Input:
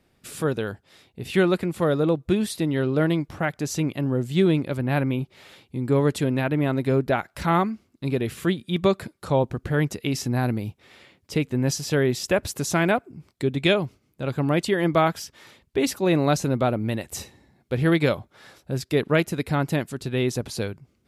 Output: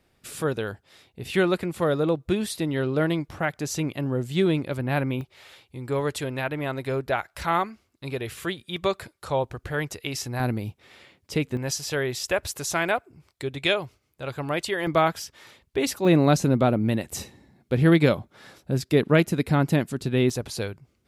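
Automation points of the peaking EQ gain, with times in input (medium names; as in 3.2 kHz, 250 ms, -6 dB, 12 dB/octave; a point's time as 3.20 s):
peaking EQ 210 Hz 1.6 oct
-4 dB
from 5.21 s -12.5 dB
from 10.40 s -2.5 dB
from 11.57 s -13 dB
from 14.87 s -4.5 dB
from 16.05 s +4 dB
from 20.30 s -4.5 dB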